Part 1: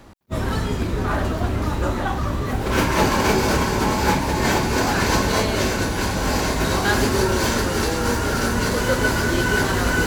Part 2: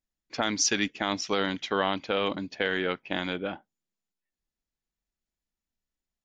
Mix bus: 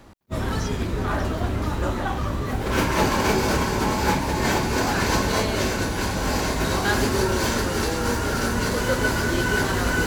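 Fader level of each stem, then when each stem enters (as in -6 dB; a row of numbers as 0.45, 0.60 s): -2.5, -15.0 dB; 0.00, 0.00 s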